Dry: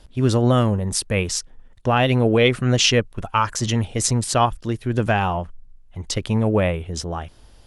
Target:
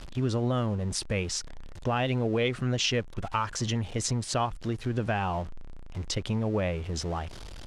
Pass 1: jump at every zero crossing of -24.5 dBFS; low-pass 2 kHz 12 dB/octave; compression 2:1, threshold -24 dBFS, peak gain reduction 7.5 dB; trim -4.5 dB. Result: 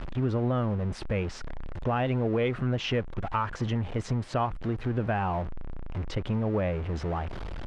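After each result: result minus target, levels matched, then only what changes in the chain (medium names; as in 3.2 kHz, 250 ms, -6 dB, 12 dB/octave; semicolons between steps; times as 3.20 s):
8 kHz band -16.5 dB; jump at every zero crossing: distortion +8 dB
change: low-pass 6.8 kHz 12 dB/octave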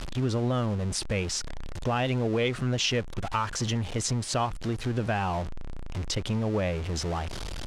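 jump at every zero crossing: distortion +8 dB
change: jump at every zero crossing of -33 dBFS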